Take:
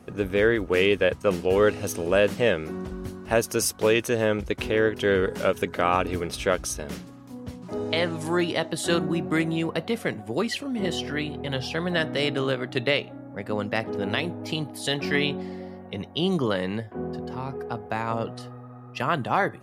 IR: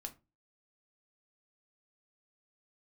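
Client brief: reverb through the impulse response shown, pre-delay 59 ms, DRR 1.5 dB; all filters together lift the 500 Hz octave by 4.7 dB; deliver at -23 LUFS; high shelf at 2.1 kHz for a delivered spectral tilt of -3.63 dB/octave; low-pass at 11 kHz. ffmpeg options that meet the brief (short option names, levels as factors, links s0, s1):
-filter_complex "[0:a]lowpass=11000,equalizer=f=500:t=o:g=5,highshelf=f=2100:g=8.5,asplit=2[s0][s1];[1:a]atrim=start_sample=2205,adelay=59[s2];[s1][s2]afir=irnorm=-1:irlink=0,volume=1.26[s3];[s0][s3]amix=inputs=2:normalize=0,volume=0.631"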